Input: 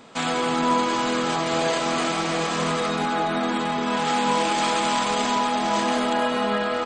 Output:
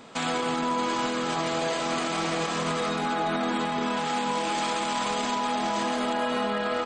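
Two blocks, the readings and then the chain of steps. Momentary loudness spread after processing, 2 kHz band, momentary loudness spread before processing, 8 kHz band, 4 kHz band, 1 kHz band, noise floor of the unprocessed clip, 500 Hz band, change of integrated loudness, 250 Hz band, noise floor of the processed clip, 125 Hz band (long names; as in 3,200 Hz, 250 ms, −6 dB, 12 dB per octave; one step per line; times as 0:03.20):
1 LU, −4.0 dB, 3 LU, −4.5 dB, −4.5 dB, −4.5 dB, −26 dBFS, −4.0 dB, −4.5 dB, −4.5 dB, −29 dBFS, −4.0 dB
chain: brickwall limiter −19 dBFS, peak gain reduction 8.5 dB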